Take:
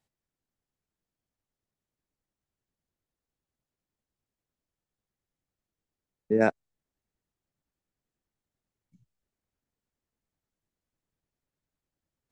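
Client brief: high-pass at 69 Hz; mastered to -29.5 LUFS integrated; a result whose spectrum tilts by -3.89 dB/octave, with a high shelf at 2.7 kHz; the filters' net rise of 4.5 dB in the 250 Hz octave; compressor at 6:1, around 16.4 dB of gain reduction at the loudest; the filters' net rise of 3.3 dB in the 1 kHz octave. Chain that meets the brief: high-pass 69 Hz; peaking EQ 250 Hz +5.5 dB; peaking EQ 1 kHz +5.5 dB; treble shelf 2.7 kHz -6.5 dB; compression 6:1, threshold -33 dBFS; trim +9 dB

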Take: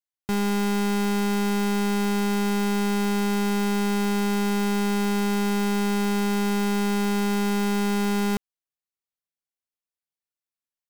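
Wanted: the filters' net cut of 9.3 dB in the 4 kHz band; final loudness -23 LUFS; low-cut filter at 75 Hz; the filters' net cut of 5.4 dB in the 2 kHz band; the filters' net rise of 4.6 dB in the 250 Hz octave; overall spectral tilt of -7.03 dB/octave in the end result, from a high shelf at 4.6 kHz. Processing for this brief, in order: high-pass 75 Hz; peaking EQ 250 Hz +6.5 dB; peaking EQ 2 kHz -4.5 dB; peaking EQ 4 kHz -6.5 dB; treble shelf 4.6 kHz -8 dB; trim -2 dB

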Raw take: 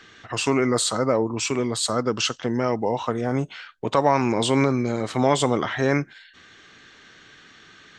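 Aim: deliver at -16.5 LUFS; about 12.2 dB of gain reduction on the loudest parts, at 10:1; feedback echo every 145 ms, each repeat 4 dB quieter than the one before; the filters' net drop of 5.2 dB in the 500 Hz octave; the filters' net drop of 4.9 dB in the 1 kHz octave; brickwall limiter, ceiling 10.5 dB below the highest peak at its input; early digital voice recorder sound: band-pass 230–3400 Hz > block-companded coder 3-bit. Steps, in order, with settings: peaking EQ 500 Hz -5 dB; peaking EQ 1 kHz -4.5 dB; compression 10:1, threshold -30 dBFS; peak limiter -27.5 dBFS; band-pass 230–3400 Hz; feedback delay 145 ms, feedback 63%, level -4 dB; block-companded coder 3-bit; trim +22 dB

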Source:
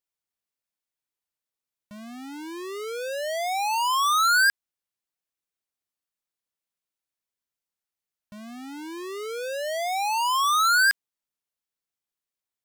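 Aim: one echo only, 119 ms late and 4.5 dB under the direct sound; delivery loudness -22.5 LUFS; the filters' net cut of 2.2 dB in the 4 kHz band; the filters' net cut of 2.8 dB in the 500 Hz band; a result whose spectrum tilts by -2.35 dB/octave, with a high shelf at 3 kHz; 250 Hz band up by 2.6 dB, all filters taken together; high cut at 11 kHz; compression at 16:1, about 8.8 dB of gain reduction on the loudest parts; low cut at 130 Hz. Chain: high-pass 130 Hz; low-pass 11 kHz; peaking EQ 250 Hz +5.5 dB; peaking EQ 500 Hz -5 dB; treble shelf 3 kHz +5 dB; peaking EQ 4 kHz -6.5 dB; compression 16:1, threshold -27 dBFS; delay 119 ms -4.5 dB; trim +7 dB

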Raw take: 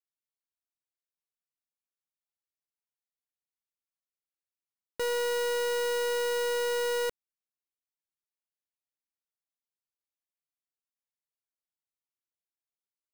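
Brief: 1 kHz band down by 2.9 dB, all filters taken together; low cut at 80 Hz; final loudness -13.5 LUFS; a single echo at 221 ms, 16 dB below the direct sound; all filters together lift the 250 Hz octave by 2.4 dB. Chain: high-pass 80 Hz; peaking EQ 250 Hz +4 dB; peaking EQ 1 kHz -3.5 dB; delay 221 ms -16 dB; trim +16.5 dB

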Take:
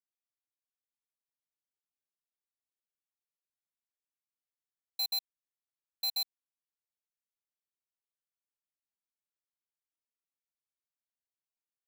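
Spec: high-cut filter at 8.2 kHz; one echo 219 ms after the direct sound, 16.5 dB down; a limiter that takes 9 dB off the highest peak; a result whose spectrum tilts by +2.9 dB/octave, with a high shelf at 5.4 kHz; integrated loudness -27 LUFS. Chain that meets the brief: low-pass 8.2 kHz; treble shelf 5.4 kHz +7 dB; peak limiter -34.5 dBFS; delay 219 ms -16.5 dB; trim +14 dB

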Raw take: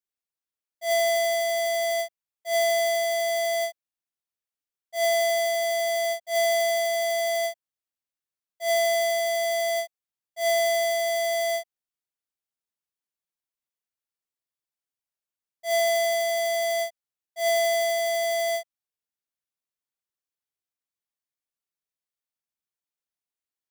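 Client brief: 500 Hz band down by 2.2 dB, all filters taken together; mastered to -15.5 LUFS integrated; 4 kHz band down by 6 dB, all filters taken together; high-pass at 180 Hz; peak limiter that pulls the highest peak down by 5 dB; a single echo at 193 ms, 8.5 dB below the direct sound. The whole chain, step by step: high-pass 180 Hz; peaking EQ 500 Hz -3.5 dB; peaking EQ 4 kHz -7.5 dB; peak limiter -23 dBFS; delay 193 ms -8.5 dB; trim +13.5 dB

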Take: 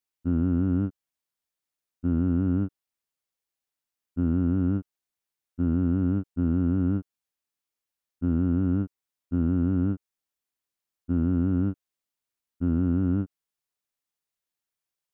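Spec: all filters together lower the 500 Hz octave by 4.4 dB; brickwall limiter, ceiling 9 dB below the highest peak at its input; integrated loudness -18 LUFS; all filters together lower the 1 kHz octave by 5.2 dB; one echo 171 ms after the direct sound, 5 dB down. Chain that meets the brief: peaking EQ 500 Hz -6 dB; peaking EQ 1 kHz -6.5 dB; peak limiter -25.5 dBFS; delay 171 ms -5 dB; trim +17 dB

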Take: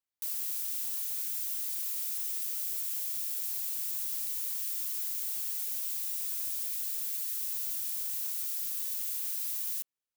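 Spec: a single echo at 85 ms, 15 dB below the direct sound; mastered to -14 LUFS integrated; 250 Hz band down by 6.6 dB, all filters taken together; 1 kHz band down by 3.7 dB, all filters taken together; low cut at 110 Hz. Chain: high-pass 110 Hz; peaking EQ 250 Hz -9 dB; peaking EQ 1 kHz -4.5 dB; delay 85 ms -15 dB; trim +17 dB

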